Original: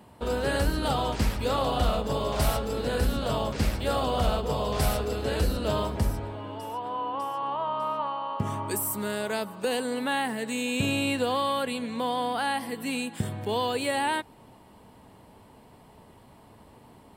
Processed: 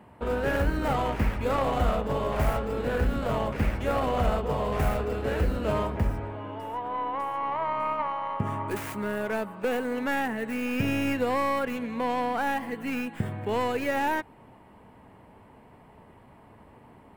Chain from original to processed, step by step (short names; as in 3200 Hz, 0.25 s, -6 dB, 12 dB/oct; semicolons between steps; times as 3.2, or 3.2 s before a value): tracing distortion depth 0.41 ms; resonant high shelf 3000 Hz -9.5 dB, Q 1.5